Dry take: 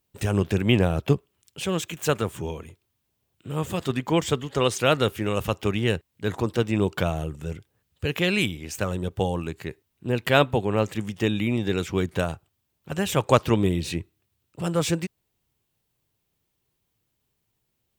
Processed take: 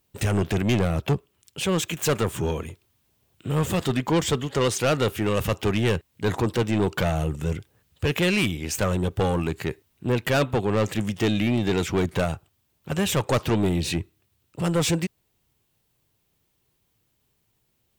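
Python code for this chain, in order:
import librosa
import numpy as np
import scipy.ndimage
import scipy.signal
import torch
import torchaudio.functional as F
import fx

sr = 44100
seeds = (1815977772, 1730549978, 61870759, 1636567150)

p1 = fx.rider(x, sr, range_db=4, speed_s=0.5)
p2 = x + (p1 * 10.0 ** (3.0 / 20.0))
p3 = 10.0 ** (-14.0 / 20.0) * np.tanh(p2 / 10.0 ** (-14.0 / 20.0))
y = p3 * 10.0 ** (-2.5 / 20.0)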